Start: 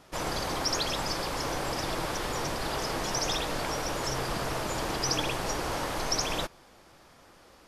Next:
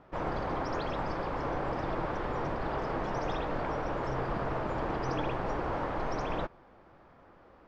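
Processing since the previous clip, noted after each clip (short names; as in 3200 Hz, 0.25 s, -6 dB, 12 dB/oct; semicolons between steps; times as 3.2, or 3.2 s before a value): LPF 1500 Hz 12 dB/oct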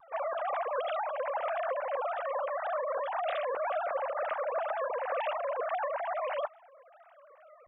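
sine-wave speech; wow and flutter 140 cents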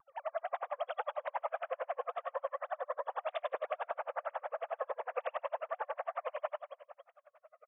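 on a send: reverse bouncing-ball echo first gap 0.1 s, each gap 1.1×, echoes 5; on the sum: dB-linear tremolo 11 Hz, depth 39 dB; gain -1.5 dB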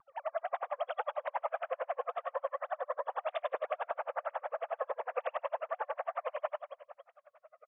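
air absorption 74 m; gain +2 dB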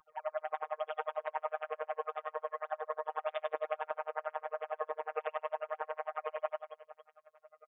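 robotiser 155 Hz; gain +1 dB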